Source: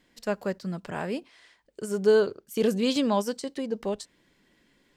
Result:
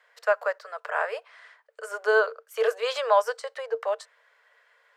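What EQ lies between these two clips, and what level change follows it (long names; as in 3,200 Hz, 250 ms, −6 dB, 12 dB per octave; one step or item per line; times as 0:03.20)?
Chebyshev high-pass with heavy ripple 440 Hz, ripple 6 dB
parametric band 590 Hz +3.5 dB 2.7 octaves
parametric band 1,200 Hz +13 dB 1.3 octaves
0.0 dB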